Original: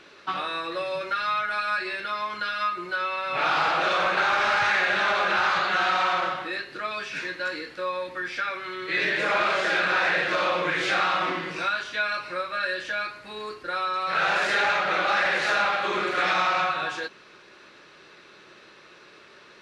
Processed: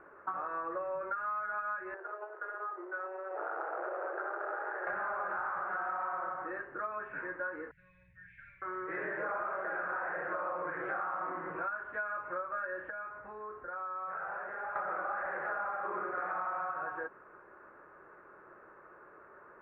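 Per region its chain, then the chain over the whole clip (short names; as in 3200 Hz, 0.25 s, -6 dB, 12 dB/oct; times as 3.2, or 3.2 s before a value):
1.94–4.87 median filter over 41 samples + steep high-pass 330 Hz 96 dB/oct + high shelf 3500 Hz +10 dB
7.71–8.62 CVSD 64 kbps + inverse Chebyshev band-stop 270–1300 Hz + doubler 49 ms -6.5 dB
12.9–14.76 notch 320 Hz, Q 6 + compressor 2.5:1, threshold -39 dBFS
whole clip: steep low-pass 1500 Hz 36 dB/oct; bell 190 Hz -9.5 dB 2 oct; compressor, threshold -34 dBFS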